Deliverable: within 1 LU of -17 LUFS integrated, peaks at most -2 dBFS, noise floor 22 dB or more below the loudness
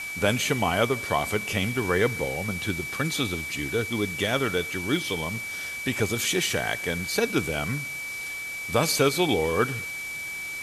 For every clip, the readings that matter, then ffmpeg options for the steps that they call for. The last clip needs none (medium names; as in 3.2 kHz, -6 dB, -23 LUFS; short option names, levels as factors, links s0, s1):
steady tone 2.3 kHz; tone level -32 dBFS; noise floor -34 dBFS; noise floor target -48 dBFS; loudness -26.0 LUFS; peak level -8.0 dBFS; loudness target -17.0 LUFS
-> -af "bandreject=f=2300:w=30"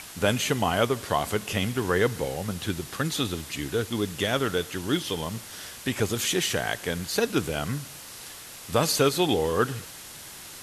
steady tone not found; noise floor -43 dBFS; noise floor target -49 dBFS
-> -af "afftdn=nr=6:nf=-43"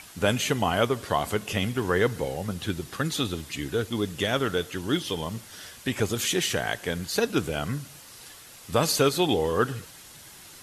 noise floor -48 dBFS; noise floor target -49 dBFS
-> -af "afftdn=nr=6:nf=-48"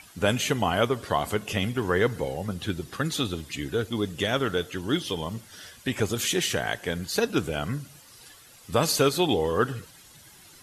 noise floor -52 dBFS; loudness -27.0 LUFS; peak level -8.5 dBFS; loudness target -17.0 LUFS
-> -af "volume=3.16,alimiter=limit=0.794:level=0:latency=1"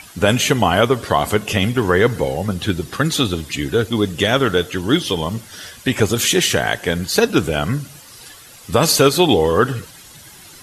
loudness -17.5 LUFS; peak level -2.0 dBFS; noise floor -42 dBFS